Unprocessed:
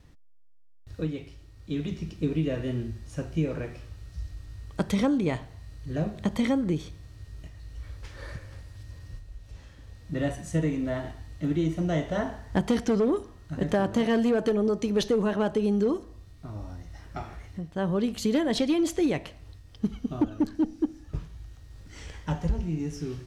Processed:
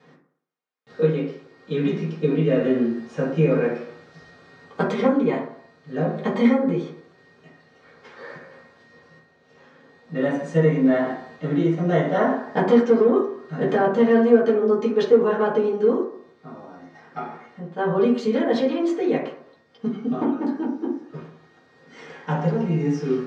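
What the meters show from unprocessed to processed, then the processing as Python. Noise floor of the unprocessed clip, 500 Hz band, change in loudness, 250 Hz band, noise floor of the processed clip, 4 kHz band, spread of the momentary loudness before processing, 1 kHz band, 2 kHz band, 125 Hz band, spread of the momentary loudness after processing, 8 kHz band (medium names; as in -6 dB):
-51 dBFS, +9.5 dB, +7.0 dB, +5.0 dB, -57 dBFS, -1.0 dB, 20 LU, +9.0 dB, +7.0 dB, +4.0 dB, 17 LU, no reading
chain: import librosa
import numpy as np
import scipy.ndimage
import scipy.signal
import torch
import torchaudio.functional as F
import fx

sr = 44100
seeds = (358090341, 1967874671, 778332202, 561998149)

y = scipy.signal.sosfilt(scipy.signal.butter(4, 230.0, 'highpass', fs=sr, output='sos'), x)
y = fx.rider(y, sr, range_db=4, speed_s=0.5)
y = fx.air_absorb(y, sr, metres=150.0)
y = fx.rev_fdn(y, sr, rt60_s=0.63, lf_ratio=0.85, hf_ratio=0.35, size_ms=38.0, drr_db=-9.0)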